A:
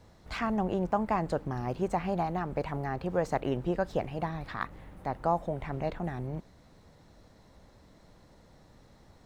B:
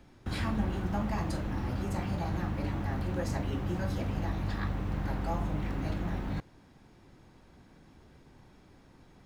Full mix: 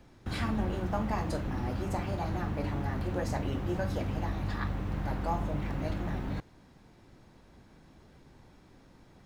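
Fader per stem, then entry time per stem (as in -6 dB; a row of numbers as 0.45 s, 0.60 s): -8.0 dB, -0.5 dB; 0.00 s, 0.00 s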